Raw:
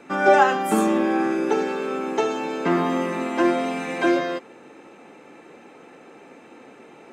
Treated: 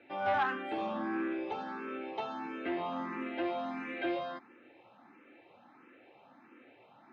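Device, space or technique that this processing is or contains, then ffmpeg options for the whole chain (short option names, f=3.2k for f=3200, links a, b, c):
barber-pole phaser into a guitar amplifier: -filter_complex "[0:a]asplit=2[a][b];[b]afreqshift=1.5[c];[a][c]amix=inputs=2:normalize=1,asoftclip=type=tanh:threshold=-15.5dB,highpass=78,equalizer=f=110:t=q:w=4:g=5,equalizer=f=170:t=q:w=4:g=-8,equalizer=f=440:t=q:w=4:g=-10,lowpass=f=3.8k:w=0.5412,lowpass=f=3.8k:w=1.3066,volume=-8dB"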